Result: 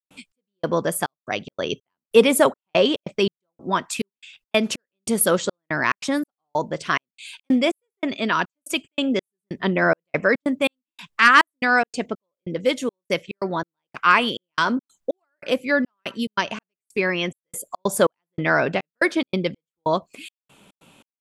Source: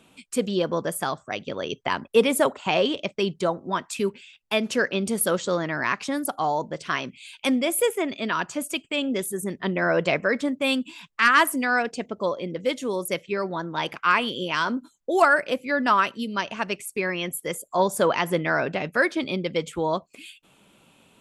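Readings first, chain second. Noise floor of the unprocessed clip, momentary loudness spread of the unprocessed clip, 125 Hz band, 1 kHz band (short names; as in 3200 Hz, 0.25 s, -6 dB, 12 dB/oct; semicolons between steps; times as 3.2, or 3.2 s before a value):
-62 dBFS, 8 LU, +1.5 dB, +1.0 dB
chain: step gate ".xx...xxxx..xx" 142 bpm -60 dB; gain +4.5 dB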